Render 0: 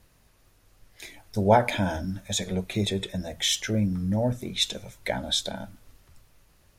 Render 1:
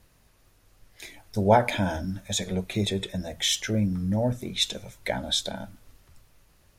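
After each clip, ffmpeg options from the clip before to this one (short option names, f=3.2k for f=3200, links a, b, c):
-af anull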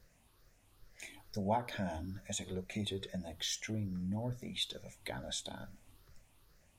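-af "afftfilt=real='re*pow(10,9/40*sin(2*PI*(0.58*log(max(b,1)*sr/1024/100)/log(2)-(2.3)*(pts-256)/sr)))':imag='im*pow(10,9/40*sin(2*PI*(0.58*log(max(b,1)*sr/1024/100)/log(2)-(2.3)*(pts-256)/sr)))':win_size=1024:overlap=0.75,acompressor=threshold=-39dB:ratio=1.5,volume=-7dB"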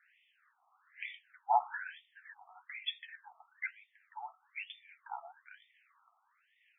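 -af "afftfilt=real='re*between(b*sr/1024,940*pow(2600/940,0.5+0.5*sin(2*PI*1.1*pts/sr))/1.41,940*pow(2600/940,0.5+0.5*sin(2*PI*1.1*pts/sr))*1.41)':imag='im*between(b*sr/1024,940*pow(2600/940,0.5+0.5*sin(2*PI*1.1*pts/sr))/1.41,940*pow(2600/940,0.5+0.5*sin(2*PI*1.1*pts/sr))*1.41)':win_size=1024:overlap=0.75,volume=8dB"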